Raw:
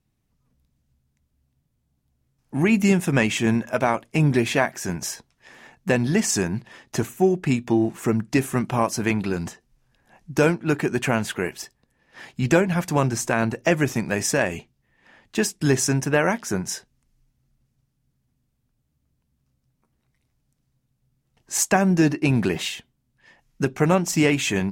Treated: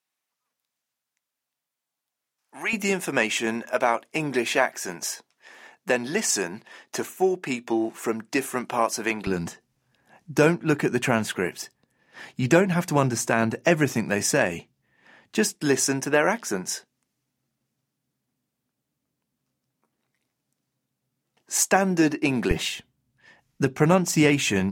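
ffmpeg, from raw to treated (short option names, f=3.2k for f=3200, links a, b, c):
-af "asetnsamples=n=441:p=0,asendcmd='2.73 highpass f 370;9.27 highpass f 120;15.55 highpass f 250;22.51 highpass f 66',highpass=910"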